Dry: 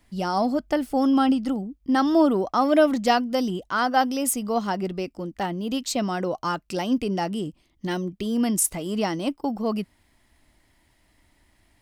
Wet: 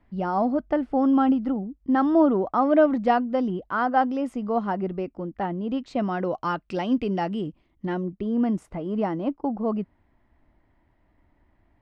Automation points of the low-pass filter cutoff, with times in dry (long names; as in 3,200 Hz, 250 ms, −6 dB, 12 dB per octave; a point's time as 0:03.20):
0:05.90 1,600 Hz
0:06.36 2,800 Hz
0:07.31 2,800 Hz
0:08.14 1,300 Hz